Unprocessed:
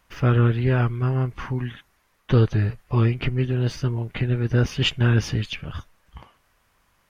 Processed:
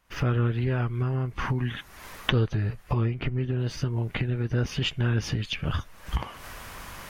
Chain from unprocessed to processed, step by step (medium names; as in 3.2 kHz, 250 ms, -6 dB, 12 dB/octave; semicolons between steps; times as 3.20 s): recorder AGC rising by 58 dB/s; 2.97–3.59 s: treble shelf 3.5 kHz -8.5 dB; trim -6.5 dB